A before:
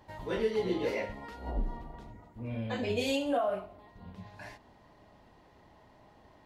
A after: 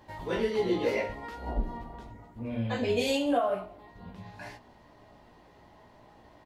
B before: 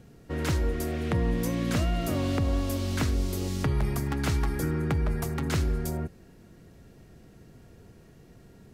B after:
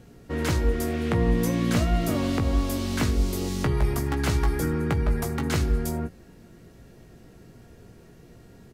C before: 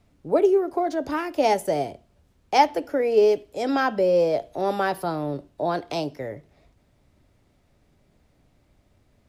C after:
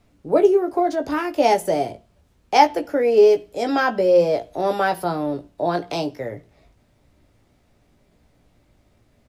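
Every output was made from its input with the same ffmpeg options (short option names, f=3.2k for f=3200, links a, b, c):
-filter_complex "[0:a]bandreject=f=60:t=h:w=6,bandreject=f=120:t=h:w=6,bandreject=f=180:t=h:w=6,asplit=2[a][b];[b]adelay=17,volume=-6.5dB[c];[a][c]amix=inputs=2:normalize=0,volume=2.5dB"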